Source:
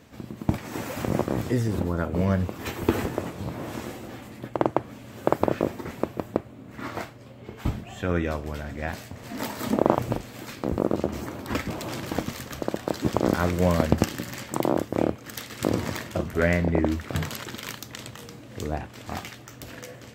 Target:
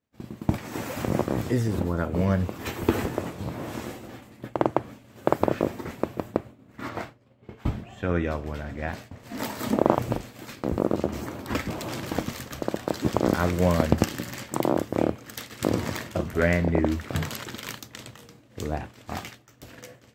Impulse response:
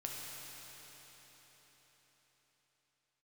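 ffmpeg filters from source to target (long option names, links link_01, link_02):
-filter_complex "[0:a]agate=range=-33dB:threshold=-35dB:ratio=3:detection=peak,asettb=1/sr,asplit=3[link_01][link_02][link_03];[link_01]atrim=end=6.894[link_04];[link_02]atrim=start=6.89:end=9.2,asetpts=PTS-STARTPTS,afade=type=in:duration=0.004:curve=qsin,afade=type=out:start_time=2.306:duration=0.004:curve=qsin,highshelf=frequency=5200:gain=-8[link_05];[link_03]atrim=start=9.196[link_06];[link_04][link_05]acrossfade=duration=0.004:curve1=hsin:curve2=qsin[link_07];[link_07][link_06]acrossfade=duration=0.004:curve1=qsin:curve2=hsin"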